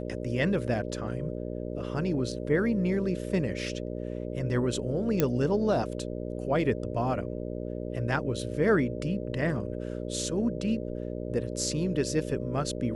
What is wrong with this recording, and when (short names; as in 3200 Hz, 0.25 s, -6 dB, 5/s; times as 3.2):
buzz 60 Hz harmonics 10 -35 dBFS
5.2 pop -9 dBFS